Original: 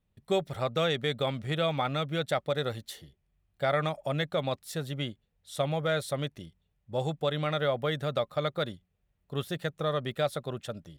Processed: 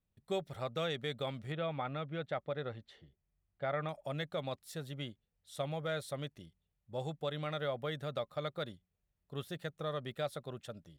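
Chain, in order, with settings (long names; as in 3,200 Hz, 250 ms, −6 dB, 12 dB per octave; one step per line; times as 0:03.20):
0:01.52–0:03.89: low-pass filter 2,600 Hz 12 dB per octave
level −8.5 dB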